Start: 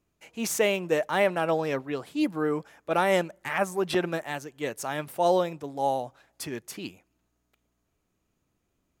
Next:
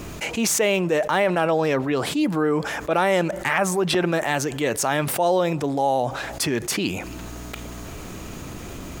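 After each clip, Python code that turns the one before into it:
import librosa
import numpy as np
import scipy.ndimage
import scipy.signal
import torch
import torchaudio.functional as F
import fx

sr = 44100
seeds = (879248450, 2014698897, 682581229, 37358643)

y = fx.peak_eq(x, sr, hz=12000.0, db=-5.0, octaves=0.44)
y = fx.env_flatten(y, sr, amount_pct=70)
y = y * librosa.db_to_amplitude(1.5)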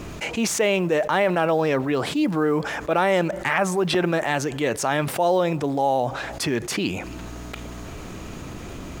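y = fx.high_shelf(x, sr, hz=8400.0, db=-10.0)
y = fx.quant_companded(y, sr, bits=8)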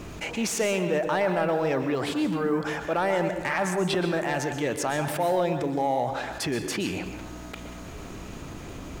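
y = 10.0 ** (-11.5 / 20.0) * np.tanh(x / 10.0 ** (-11.5 / 20.0))
y = fx.rev_plate(y, sr, seeds[0], rt60_s=0.73, hf_ratio=0.65, predelay_ms=110, drr_db=7.0)
y = y * librosa.db_to_amplitude(-4.0)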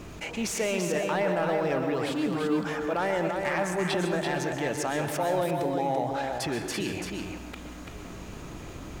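y = x + 10.0 ** (-5.0 / 20.0) * np.pad(x, (int(337 * sr / 1000.0), 0))[:len(x)]
y = y * librosa.db_to_amplitude(-3.0)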